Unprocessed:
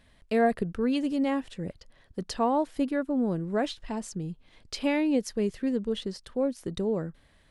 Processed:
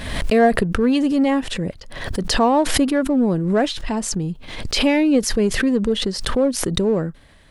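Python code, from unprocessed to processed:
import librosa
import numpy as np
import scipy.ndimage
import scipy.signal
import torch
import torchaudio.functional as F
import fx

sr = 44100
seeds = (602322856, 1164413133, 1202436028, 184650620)

p1 = np.clip(10.0 ** (30.0 / 20.0) * x, -1.0, 1.0) / 10.0 ** (30.0 / 20.0)
p2 = x + (p1 * librosa.db_to_amplitude(-10.0))
p3 = fx.pre_swell(p2, sr, db_per_s=51.0)
y = p3 * librosa.db_to_amplitude(8.0)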